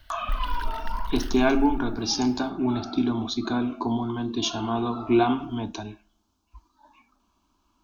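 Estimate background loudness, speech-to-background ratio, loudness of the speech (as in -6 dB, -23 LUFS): -38.0 LUFS, 12.0 dB, -26.0 LUFS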